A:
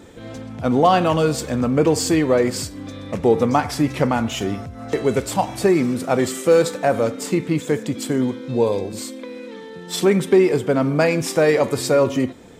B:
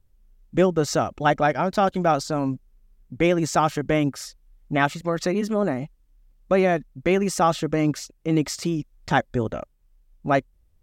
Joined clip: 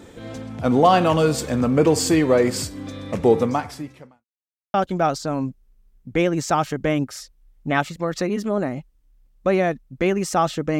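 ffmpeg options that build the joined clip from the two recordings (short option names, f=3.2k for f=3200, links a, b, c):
-filter_complex "[0:a]apad=whole_dur=10.79,atrim=end=10.79,asplit=2[a][b];[a]atrim=end=4.25,asetpts=PTS-STARTPTS,afade=t=out:st=3.32:d=0.93:c=qua[c];[b]atrim=start=4.25:end=4.74,asetpts=PTS-STARTPTS,volume=0[d];[1:a]atrim=start=1.79:end=7.84,asetpts=PTS-STARTPTS,afade=t=in:d=0.004:c=hsin[e];[c][d][e]concat=n=3:v=0:a=1"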